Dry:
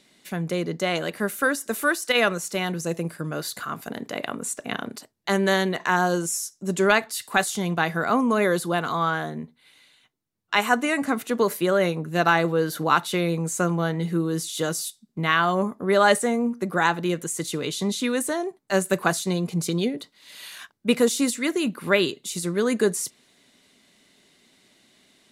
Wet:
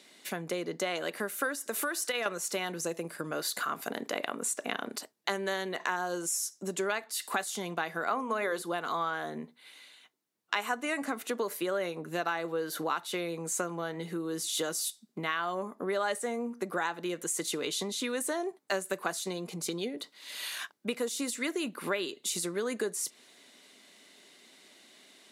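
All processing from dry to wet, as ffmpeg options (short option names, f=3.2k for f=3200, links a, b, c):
-filter_complex "[0:a]asettb=1/sr,asplit=3[a][b][c];[a]atrim=end=1.684[d];[b]atrim=start=1.68:end=2.26,asetpts=PTS-STARTPTS,afade=t=in:d=0.004:c=qsin,afade=t=out:st=0.576:d=0.004:c=qsin,acompressor=threshold=-27dB:ratio=3:attack=3.2:release=140:knee=1:detection=peak,volume=19.5dB,asoftclip=hard,volume=-19.5dB[e];[c]atrim=start=2.256[f];[d][e]acrossfade=d=0.004:c1=hsin:c2=qsin[g];[g][f]acrossfade=d=0.004:c1=qsin:c2=hsin,asettb=1/sr,asplit=3[h][i][j];[h]atrim=end=8.084[k];[i]atrim=start=8.08:end=8.62,asetpts=PTS-STARTPTS,afade=t=in:d=0.004:c=qsin,afade=t=out:st=0.536:d=0.004:c=qsin,equalizer=f=1.3k:w=0.39:g=6,bandreject=f=60:t=h:w=6,bandreject=f=120:t=h:w=6,bandreject=f=180:t=h:w=6,bandreject=f=240:t=h:w=6,bandreject=f=300:t=h:w=6,bandreject=f=360:t=h:w=6,bandreject=f=420:t=h:w=6,bandreject=f=480:t=h:w=6[l];[j]atrim=start=8.616[m];[k][l]acrossfade=d=0.004:c1=hsin:c2=qsin[n];[n][m]acrossfade=d=0.004:c1=qsin:c2=hsin,acompressor=threshold=-31dB:ratio=6,highpass=300,volume=2.5dB"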